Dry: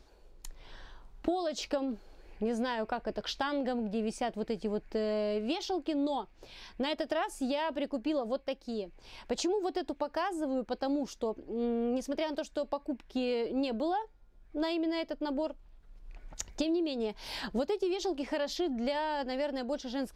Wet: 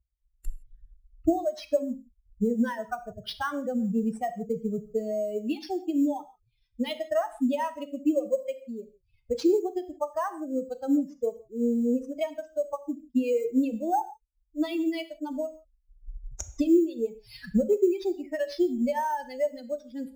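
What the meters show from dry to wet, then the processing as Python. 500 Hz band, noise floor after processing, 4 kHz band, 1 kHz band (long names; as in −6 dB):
+4.5 dB, −72 dBFS, −4.0 dB, +3.0 dB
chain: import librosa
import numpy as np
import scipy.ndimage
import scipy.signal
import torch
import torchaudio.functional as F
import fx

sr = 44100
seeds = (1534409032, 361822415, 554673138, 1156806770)

p1 = fx.bin_expand(x, sr, power=3.0)
p2 = fx.env_lowpass_down(p1, sr, base_hz=2100.0, full_db=-33.0)
p3 = fx.low_shelf(p2, sr, hz=490.0, db=8.5)
p4 = fx.sample_hold(p3, sr, seeds[0], rate_hz=7200.0, jitter_pct=0)
p5 = p3 + F.gain(torch.from_numpy(p4), -11.0).numpy()
p6 = fx.rev_gated(p5, sr, seeds[1], gate_ms=190, shape='falling', drr_db=10.0)
y = F.gain(torch.from_numpy(p6), 5.5).numpy()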